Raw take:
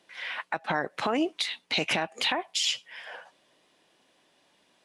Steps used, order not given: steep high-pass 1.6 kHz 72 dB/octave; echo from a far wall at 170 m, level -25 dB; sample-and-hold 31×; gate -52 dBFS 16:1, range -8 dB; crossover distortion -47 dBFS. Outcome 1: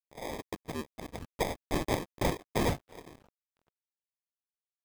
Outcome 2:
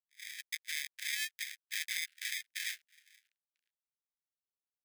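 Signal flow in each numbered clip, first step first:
steep high-pass > sample-and-hold > echo from a far wall > gate > crossover distortion; sample-and-hold > echo from a far wall > crossover distortion > steep high-pass > gate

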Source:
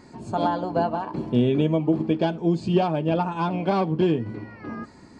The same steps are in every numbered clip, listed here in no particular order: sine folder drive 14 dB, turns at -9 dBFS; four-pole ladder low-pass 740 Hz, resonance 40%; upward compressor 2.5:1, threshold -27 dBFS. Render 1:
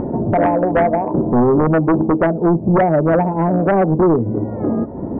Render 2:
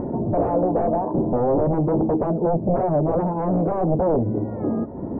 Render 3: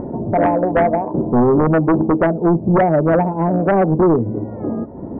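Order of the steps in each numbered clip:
four-pole ladder low-pass > upward compressor > sine folder; upward compressor > sine folder > four-pole ladder low-pass; upward compressor > four-pole ladder low-pass > sine folder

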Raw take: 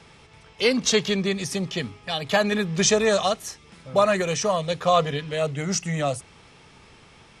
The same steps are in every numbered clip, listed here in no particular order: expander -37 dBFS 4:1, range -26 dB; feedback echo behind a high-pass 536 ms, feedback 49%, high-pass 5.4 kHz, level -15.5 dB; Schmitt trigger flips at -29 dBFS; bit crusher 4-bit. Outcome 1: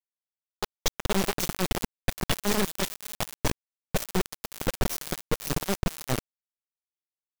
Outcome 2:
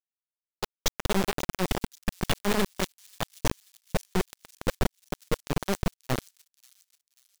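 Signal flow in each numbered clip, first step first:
expander > Schmitt trigger > feedback echo behind a high-pass > bit crusher; Schmitt trigger > bit crusher > expander > feedback echo behind a high-pass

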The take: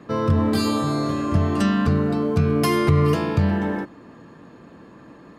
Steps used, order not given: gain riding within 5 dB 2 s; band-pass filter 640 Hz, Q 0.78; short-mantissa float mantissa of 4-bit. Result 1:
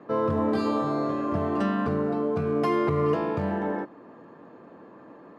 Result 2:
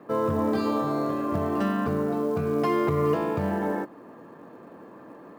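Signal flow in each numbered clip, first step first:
short-mantissa float > gain riding > band-pass filter; band-pass filter > short-mantissa float > gain riding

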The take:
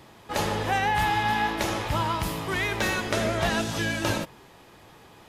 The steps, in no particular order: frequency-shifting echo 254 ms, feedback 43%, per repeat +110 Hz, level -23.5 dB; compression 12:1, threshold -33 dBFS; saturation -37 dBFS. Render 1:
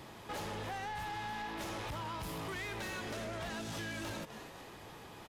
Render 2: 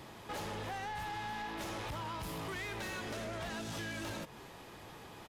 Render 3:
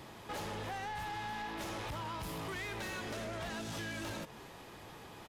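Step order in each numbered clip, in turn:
frequency-shifting echo > compression > saturation; compression > saturation > frequency-shifting echo; compression > frequency-shifting echo > saturation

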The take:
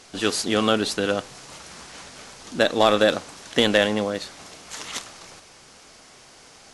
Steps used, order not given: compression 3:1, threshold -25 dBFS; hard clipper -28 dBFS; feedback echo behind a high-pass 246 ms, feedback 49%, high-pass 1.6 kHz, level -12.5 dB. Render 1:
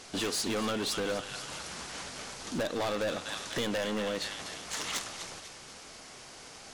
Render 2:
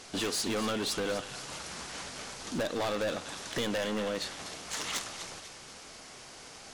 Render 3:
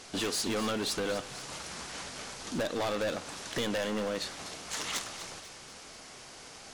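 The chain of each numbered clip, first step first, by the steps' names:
feedback echo behind a high-pass > compression > hard clipper; compression > feedback echo behind a high-pass > hard clipper; compression > hard clipper > feedback echo behind a high-pass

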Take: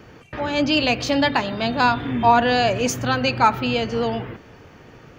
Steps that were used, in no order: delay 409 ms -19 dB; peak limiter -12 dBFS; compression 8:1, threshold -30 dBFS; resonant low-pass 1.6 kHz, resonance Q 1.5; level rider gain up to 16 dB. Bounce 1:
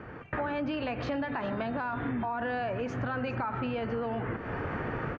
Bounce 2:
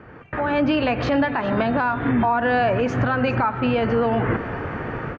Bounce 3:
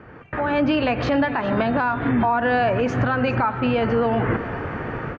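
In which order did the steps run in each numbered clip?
level rider > resonant low-pass > peak limiter > compression > delay; resonant low-pass > compression > level rider > peak limiter > delay; resonant low-pass > compression > level rider > delay > peak limiter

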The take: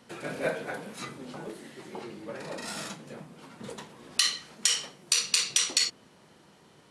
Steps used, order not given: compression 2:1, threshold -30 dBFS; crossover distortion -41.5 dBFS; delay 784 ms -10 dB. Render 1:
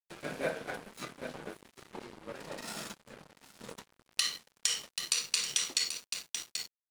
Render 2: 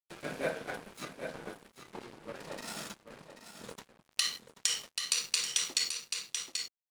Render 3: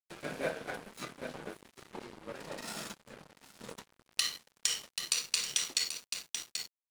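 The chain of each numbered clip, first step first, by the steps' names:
delay > crossover distortion > compression; crossover distortion > delay > compression; delay > compression > crossover distortion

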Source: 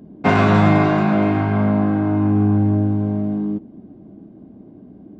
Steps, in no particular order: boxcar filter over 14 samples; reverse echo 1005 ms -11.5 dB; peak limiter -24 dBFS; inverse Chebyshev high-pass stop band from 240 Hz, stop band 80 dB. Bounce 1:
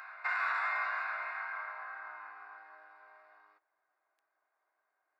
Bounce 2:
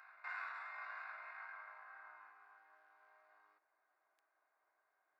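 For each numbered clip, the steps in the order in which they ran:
boxcar filter > reverse echo > inverse Chebyshev high-pass > peak limiter; boxcar filter > peak limiter > reverse echo > inverse Chebyshev high-pass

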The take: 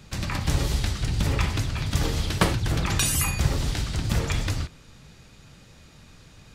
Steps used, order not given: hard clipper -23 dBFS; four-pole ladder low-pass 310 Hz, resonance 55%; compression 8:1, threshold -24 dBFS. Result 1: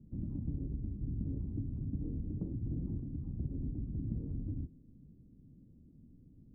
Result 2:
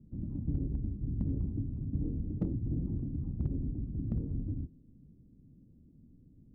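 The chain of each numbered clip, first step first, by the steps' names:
compression > four-pole ladder low-pass > hard clipper; four-pole ladder low-pass > compression > hard clipper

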